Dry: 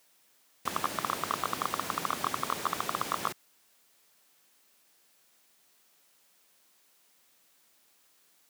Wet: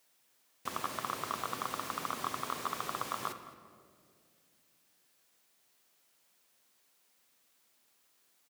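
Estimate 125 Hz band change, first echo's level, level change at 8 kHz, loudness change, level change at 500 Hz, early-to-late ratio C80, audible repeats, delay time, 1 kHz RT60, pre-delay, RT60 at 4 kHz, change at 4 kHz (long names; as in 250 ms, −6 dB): −4.5 dB, −19.0 dB, −5.0 dB, −5.0 dB, −4.0 dB, 11.5 dB, 1, 216 ms, 1.8 s, 8 ms, 1.2 s, −5.0 dB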